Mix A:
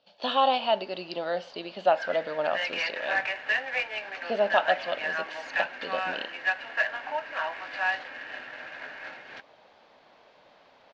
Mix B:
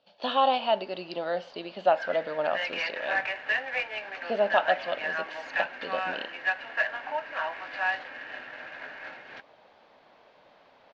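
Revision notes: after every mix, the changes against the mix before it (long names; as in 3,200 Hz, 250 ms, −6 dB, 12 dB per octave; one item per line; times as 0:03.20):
master: add high-shelf EQ 5,000 Hz −7.5 dB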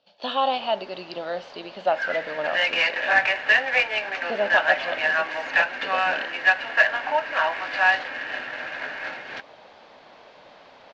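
background +8.5 dB
master: add high-shelf EQ 5,000 Hz +7.5 dB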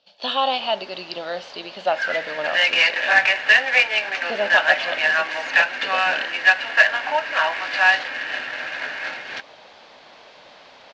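master: add high-shelf EQ 2,200 Hz +9.5 dB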